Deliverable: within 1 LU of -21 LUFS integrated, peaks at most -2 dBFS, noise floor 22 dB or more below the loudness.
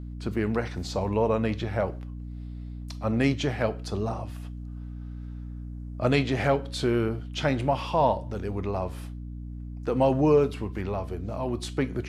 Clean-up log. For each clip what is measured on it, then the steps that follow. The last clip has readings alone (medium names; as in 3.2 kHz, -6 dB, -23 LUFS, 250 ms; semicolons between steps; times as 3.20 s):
hum 60 Hz; highest harmonic 300 Hz; hum level -35 dBFS; loudness -27.0 LUFS; peak level -10.0 dBFS; loudness target -21.0 LUFS
-> hum notches 60/120/180/240/300 Hz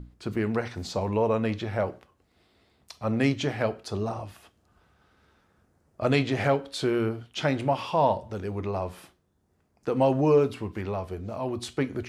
hum not found; loudness -27.5 LUFS; peak level -10.0 dBFS; loudness target -21.0 LUFS
-> trim +6.5 dB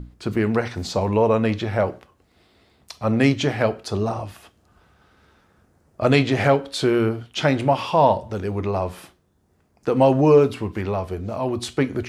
loudness -21.0 LUFS; peak level -3.5 dBFS; noise floor -63 dBFS